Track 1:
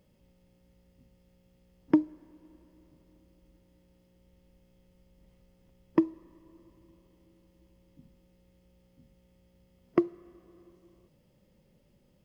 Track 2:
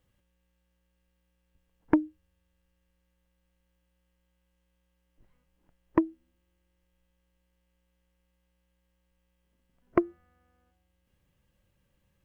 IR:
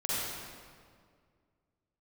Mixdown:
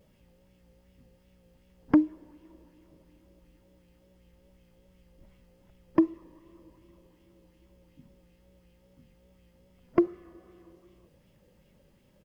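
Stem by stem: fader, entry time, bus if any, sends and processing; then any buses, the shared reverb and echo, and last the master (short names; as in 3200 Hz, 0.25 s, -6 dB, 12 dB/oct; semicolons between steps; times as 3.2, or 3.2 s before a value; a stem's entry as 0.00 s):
+1.5 dB, 0.00 s, no send, vibrato 2.5 Hz 56 cents; LFO bell 2.7 Hz 440–2900 Hz +7 dB
+2.5 dB, 6.7 ms, no send, dry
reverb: off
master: limiter -9.5 dBFS, peak gain reduction 8.5 dB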